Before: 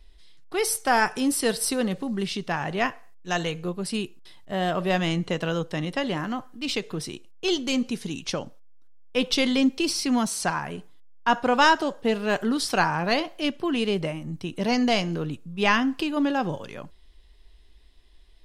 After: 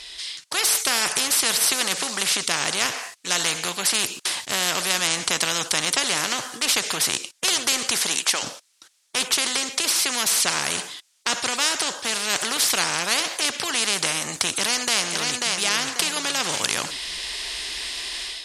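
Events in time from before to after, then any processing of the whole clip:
8.00–8.42 s: high-pass 230 Hz -> 990 Hz
14.51–15.56 s: echo throw 540 ms, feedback 20%, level -8.5 dB
whole clip: frequency weighting ITU-R 468; level rider; spectrum-flattening compressor 4:1; trim -1 dB

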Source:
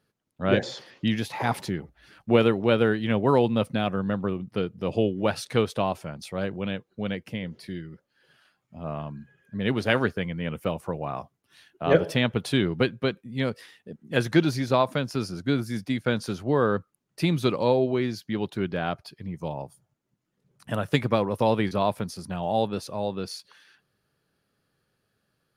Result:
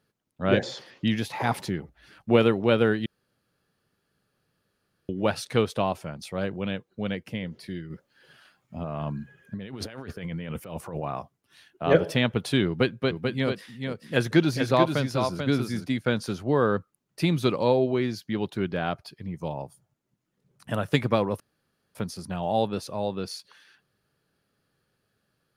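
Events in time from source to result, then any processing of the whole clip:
3.06–5.09 s: room tone
7.90–11.03 s: compressor with a negative ratio -35 dBFS
12.67–15.87 s: delay 438 ms -5.5 dB
21.40–21.95 s: room tone

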